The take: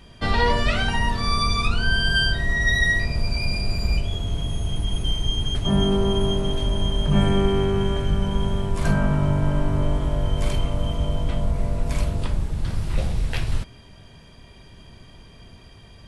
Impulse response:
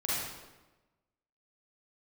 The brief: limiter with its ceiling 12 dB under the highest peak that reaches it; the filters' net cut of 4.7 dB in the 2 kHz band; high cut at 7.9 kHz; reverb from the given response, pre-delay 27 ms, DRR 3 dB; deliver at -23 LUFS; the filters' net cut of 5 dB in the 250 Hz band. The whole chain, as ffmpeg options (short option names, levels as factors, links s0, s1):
-filter_complex "[0:a]lowpass=7900,equalizer=f=250:t=o:g=-8,equalizer=f=2000:t=o:g=-5.5,alimiter=limit=0.1:level=0:latency=1,asplit=2[s0][s1];[1:a]atrim=start_sample=2205,adelay=27[s2];[s1][s2]afir=irnorm=-1:irlink=0,volume=0.299[s3];[s0][s3]amix=inputs=2:normalize=0,volume=1.88"